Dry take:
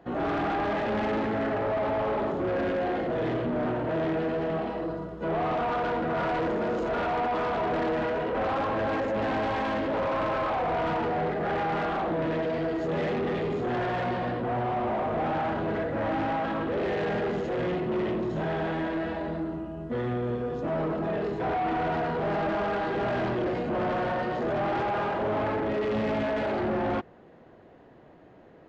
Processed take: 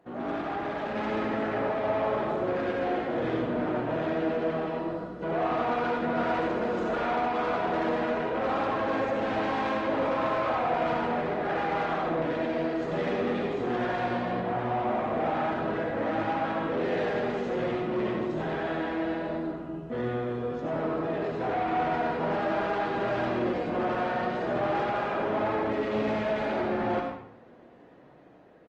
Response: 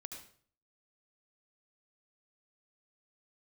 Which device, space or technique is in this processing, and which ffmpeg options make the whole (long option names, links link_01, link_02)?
far-field microphone of a smart speaker: -filter_complex "[0:a]asplit=2[link_01][link_02];[link_02]adelay=92,lowpass=frequency=4000:poles=1,volume=-10dB,asplit=2[link_03][link_04];[link_04]adelay=92,lowpass=frequency=4000:poles=1,volume=0.33,asplit=2[link_05][link_06];[link_06]adelay=92,lowpass=frequency=4000:poles=1,volume=0.33,asplit=2[link_07][link_08];[link_08]adelay=92,lowpass=frequency=4000:poles=1,volume=0.33[link_09];[link_01][link_03][link_05][link_07][link_09]amix=inputs=5:normalize=0[link_10];[1:a]atrim=start_sample=2205[link_11];[link_10][link_11]afir=irnorm=-1:irlink=0,highpass=frequency=150:poles=1,dynaudnorm=framelen=220:gausssize=9:maxgain=4dB" -ar 48000 -c:a libopus -b:a 24k